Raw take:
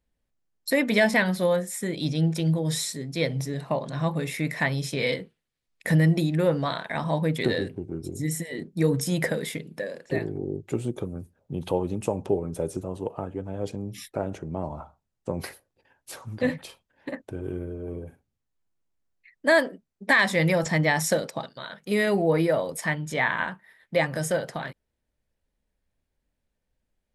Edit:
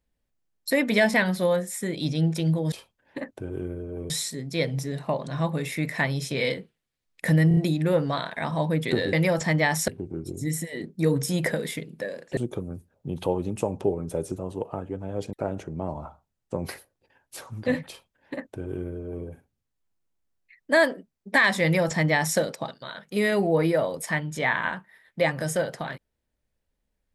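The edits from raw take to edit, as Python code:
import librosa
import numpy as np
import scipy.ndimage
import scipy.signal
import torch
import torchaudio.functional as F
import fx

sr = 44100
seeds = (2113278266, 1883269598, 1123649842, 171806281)

y = fx.edit(x, sr, fx.stutter(start_s=6.1, slice_s=0.03, count=4),
    fx.cut(start_s=10.15, length_s=0.67),
    fx.cut(start_s=13.78, length_s=0.3),
    fx.duplicate(start_s=16.63, length_s=1.38, to_s=2.72),
    fx.duplicate(start_s=20.38, length_s=0.75, to_s=7.66), tone=tone)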